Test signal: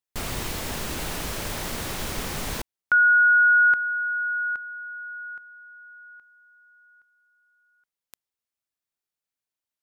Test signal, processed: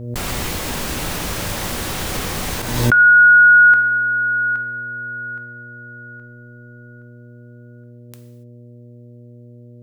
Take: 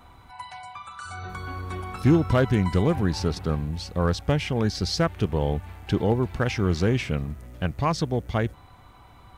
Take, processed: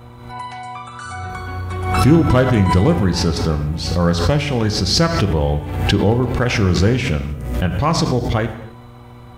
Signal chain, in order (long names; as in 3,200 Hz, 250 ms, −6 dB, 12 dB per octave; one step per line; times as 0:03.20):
hum with harmonics 120 Hz, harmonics 5, −47 dBFS −7 dB per octave
reverb whose tail is shaped and stops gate 310 ms falling, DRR 6 dB
background raised ahead of every attack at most 51 dB per second
level +5.5 dB